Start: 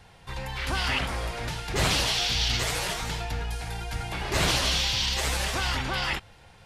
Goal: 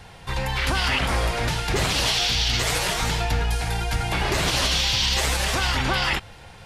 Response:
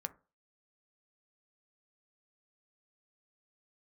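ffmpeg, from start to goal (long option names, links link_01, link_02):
-af "alimiter=limit=-21dB:level=0:latency=1:release=134,volume=8.5dB"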